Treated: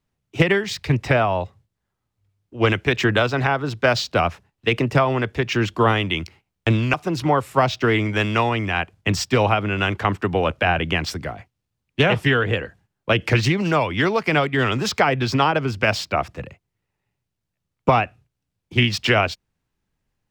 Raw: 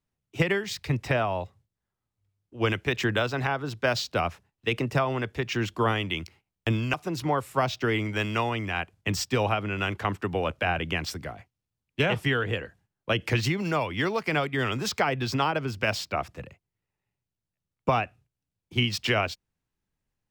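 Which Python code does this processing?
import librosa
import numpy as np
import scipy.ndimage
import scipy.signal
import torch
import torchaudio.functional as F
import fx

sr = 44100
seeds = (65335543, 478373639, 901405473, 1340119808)

y = fx.high_shelf(x, sr, hz=7300.0, db=-6.5)
y = fx.doppler_dist(y, sr, depth_ms=0.21)
y = y * 10.0 ** (7.5 / 20.0)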